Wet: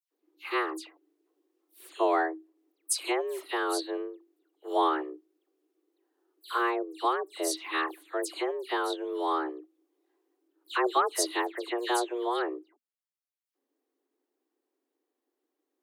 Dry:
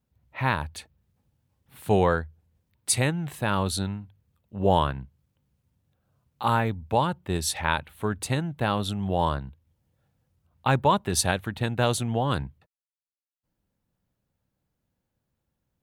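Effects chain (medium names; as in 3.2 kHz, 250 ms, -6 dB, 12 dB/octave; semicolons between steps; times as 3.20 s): phase dispersion lows, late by 110 ms, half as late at 2.7 kHz; frequency shift +240 Hz; trim -4.5 dB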